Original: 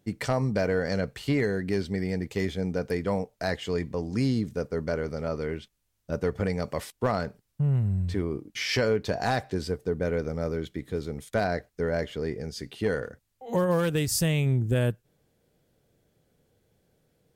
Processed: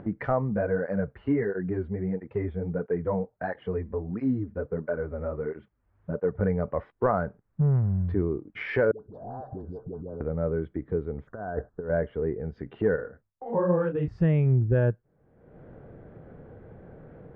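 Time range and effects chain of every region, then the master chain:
0.54–6.41 s: treble shelf 8.5 kHz -4 dB + cancelling through-zero flanger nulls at 1.5 Hz, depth 7.8 ms
7.61–8.12 s: overdrive pedal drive 16 dB, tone 1.3 kHz, clips at -16.5 dBFS + tone controls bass +1 dB, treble +14 dB
8.91–10.21 s: compression 16:1, threshold -39 dBFS + Butterworth band-stop 2.2 kHz, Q 0.55 + phase dispersion highs, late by 96 ms, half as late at 470 Hz
11.27–11.90 s: elliptic band-stop 1.6–5.9 kHz + compressor with a negative ratio -34 dBFS, ratio -0.5
12.96–14.08 s: gate with hold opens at -42 dBFS, closes at -45 dBFS + detune thickener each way 53 cents
whole clip: spectral noise reduction 6 dB; low-pass 1.6 kHz 24 dB/octave; upward compressor, threshold -30 dBFS; trim +3.5 dB

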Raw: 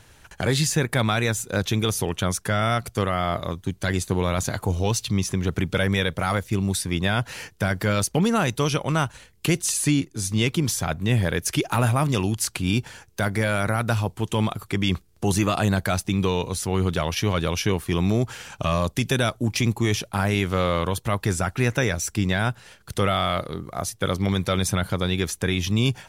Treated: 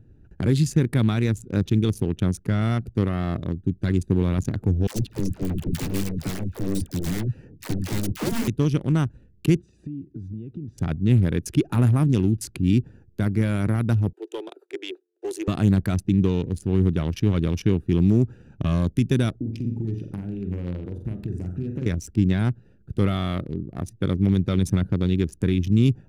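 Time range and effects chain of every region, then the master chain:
4.87–8.48 s: integer overflow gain 18 dB + phase dispersion lows, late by 91 ms, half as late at 630 Hz
9.56–10.78 s: high-pass 43 Hz + distance through air 100 m + compression 12:1, threshold -33 dBFS
14.13–15.48 s: steep high-pass 350 Hz 72 dB/octave + band-stop 1.2 kHz, Q 7.1
19.40–21.86 s: compression 10:1, threshold -27 dBFS + flutter echo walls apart 7.7 m, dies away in 0.56 s
whole clip: local Wiener filter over 41 samples; resonant low shelf 440 Hz +9.5 dB, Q 1.5; trim -6.5 dB

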